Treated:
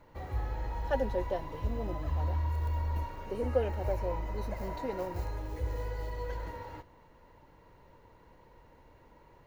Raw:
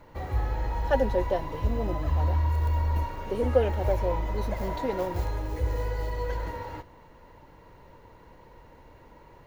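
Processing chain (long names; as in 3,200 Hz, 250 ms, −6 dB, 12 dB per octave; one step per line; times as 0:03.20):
0:03.26–0:05.38: notch filter 3,400 Hz, Q 7.7
level −6.5 dB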